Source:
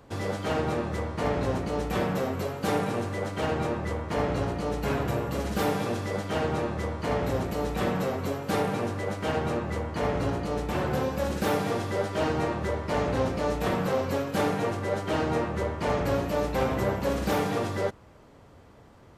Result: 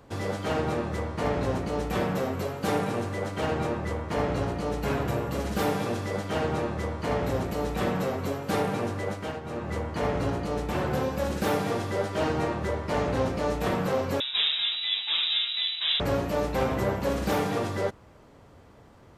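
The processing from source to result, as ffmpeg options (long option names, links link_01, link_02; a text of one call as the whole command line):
ffmpeg -i in.wav -filter_complex "[0:a]asettb=1/sr,asplit=3[link_01][link_02][link_03];[link_01]atrim=end=14.204[link_04];[link_02]atrim=start=14.2:end=16,asetpts=PTS-STARTPTS,afade=type=in:duration=0.004:curve=qsin,afade=type=out:start_time=1.796:duration=0.004:curve=qsin,lowpass=frequency=3400:width_type=q:width=0.5098,lowpass=frequency=3400:width_type=q:width=0.6013,lowpass=frequency=3400:width_type=q:width=0.9,lowpass=frequency=3400:width_type=q:width=2.563,afreqshift=-4000[link_05];[link_03]atrim=start=15.996[link_06];[link_04][link_05]acrossfade=duration=0.004:curve1=hsin:curve2=qsin[link_07];[link_07][link_06]acrossfade=duration=0.004:curve1=qsin:curve2=hsin,asplit=3[link_08][link_09][link_10];[link_08]atrim=end=9.41,asetpts=PTS-STARTPTS,afade=type=out:start_time=9.08:duration=0.33:silence=0.281838[link_11];[link_09]atrim=start=9.41:end=9.42,asetpts=PTS-STARTPTS,volume=-11dB[link_12];[link_10]atrim=start=9.42,asetpts=PTS-STARTPTS,afade=type=in:duration=0.33:silence=0.281838[link_13];[link_11][link_12][link_13]concat=n=3:v=0:a=1" out.wav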